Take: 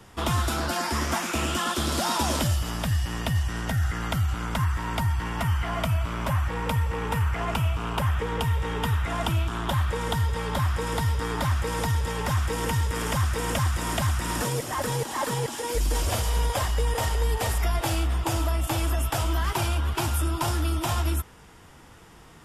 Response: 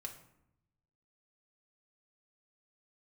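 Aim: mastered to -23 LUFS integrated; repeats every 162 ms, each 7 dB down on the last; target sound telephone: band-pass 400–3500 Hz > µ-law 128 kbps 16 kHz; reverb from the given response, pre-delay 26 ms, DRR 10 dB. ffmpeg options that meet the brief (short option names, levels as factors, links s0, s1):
-filter_complex "[0:a]aecho=1:1:162|324|486|648|810:0.447|0.201|0.0905|0.0407|0.0183,asplit=2[s0][s1];[1:a]atrim=start_sample=2205,adelay=26[s2];[s1][s2]afir=irnorm=-1:irlink=0,volume=0.447[s3];[s0][s3]amix=inputs=2:normalize=0,highpass=400,lowpass=3500,volume=2.51" -ar 16000 -c:a pcm_mulaw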